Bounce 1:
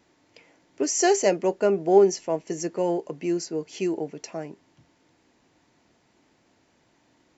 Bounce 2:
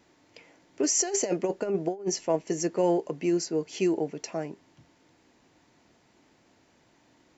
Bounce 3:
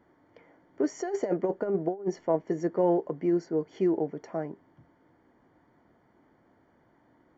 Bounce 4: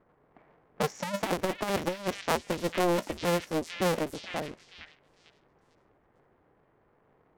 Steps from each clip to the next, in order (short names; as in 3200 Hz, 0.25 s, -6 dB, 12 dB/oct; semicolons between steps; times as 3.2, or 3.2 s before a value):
negative-ratio compressor -23 dBFS, ratio -0.5; gain -1.5 dB
polynomial smoothing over 41 samples
cycle switcher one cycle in 2, inverted; delay with a stepping band-pass 0.449 s, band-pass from 2500 Hz, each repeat 0.7 oct, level -2.5 dB; low-pass opened by the level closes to 1600 Hz, open at -26.5 dBFS; gain -2 dB